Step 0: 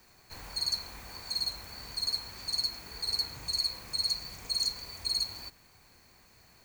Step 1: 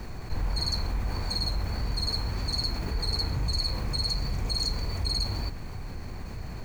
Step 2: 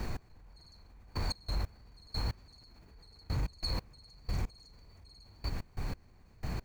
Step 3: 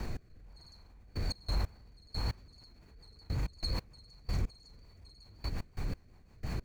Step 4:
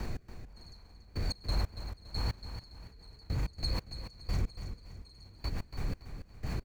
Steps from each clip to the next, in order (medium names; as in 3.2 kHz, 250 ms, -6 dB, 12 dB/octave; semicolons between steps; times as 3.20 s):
tilt EQ -3.5 dB/octave; level flattener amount 50%; trim +5.5 dB
peak limiter -26.5 dBFS, peak gain reduction 10 dB; trance gate "x......x.x..." 91 bpm -24 dB; trim +1.5 dB
rotary cabinet horn 1.1 Hz, later 5.5 Hz, at 2.02 s; trim +2 dB
feedback delay 283 ms, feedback 39%, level -10 dB; trim +1 dB